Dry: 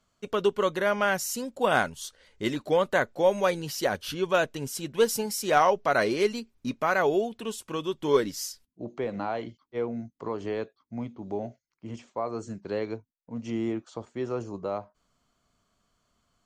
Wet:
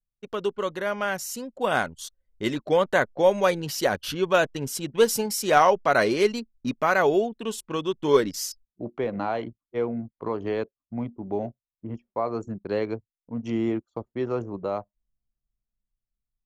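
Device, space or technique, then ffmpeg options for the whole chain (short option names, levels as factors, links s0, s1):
voice memo with heavy noise removal: -af "anlmdn=0.251,dynaudnorm=f=600:g=7:m=2.24,volume=0.708"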